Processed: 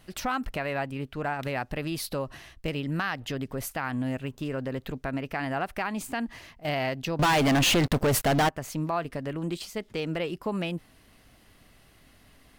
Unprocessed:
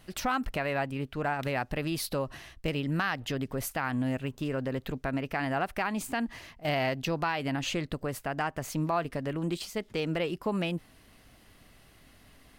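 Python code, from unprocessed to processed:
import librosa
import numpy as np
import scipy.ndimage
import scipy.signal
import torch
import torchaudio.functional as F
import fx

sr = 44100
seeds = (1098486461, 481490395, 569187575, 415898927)

y = fx.leveller(x, sr, passes=5, at=(7.19, 8.49))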